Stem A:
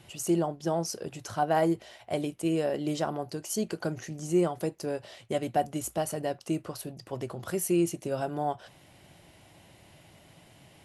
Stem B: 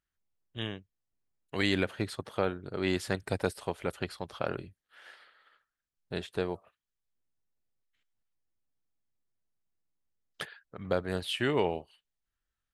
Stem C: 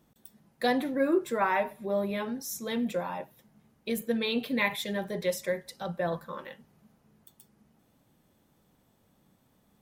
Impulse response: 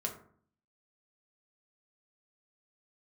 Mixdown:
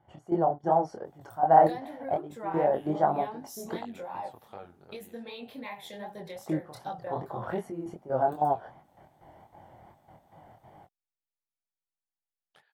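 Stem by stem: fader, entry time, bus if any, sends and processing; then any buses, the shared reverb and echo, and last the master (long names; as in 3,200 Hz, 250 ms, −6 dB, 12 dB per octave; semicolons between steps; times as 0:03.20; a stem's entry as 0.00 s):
+2.0 dB, 0.00 s, muted 0:03.83–0:06.36, no bus, no send, Savitzky-Golay smoothing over 41 samples; gate pattern ".x..xxx.xxxxx." 189 BPM −12 dB
0:04.83 −7 dB → 0:05.22 −16.5 dB, 2.15 s, bus A, no send, downward compressor 1.5 to 1, threshold −49 dBFS, peak gain reduction 9.5 dB
−2.0 dB, 1.05 s, bus A, no send, no processing
bus A: 0.0 dB, downward compressor 10 to 1, threshold −37 dBFS, peak gain reduction 15 dB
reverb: not used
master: parametric band 800 Hz +13 dB 0.62 octaves; chorus effect 2.6 Hz, delay 19.5 ms, depth 7.1 ms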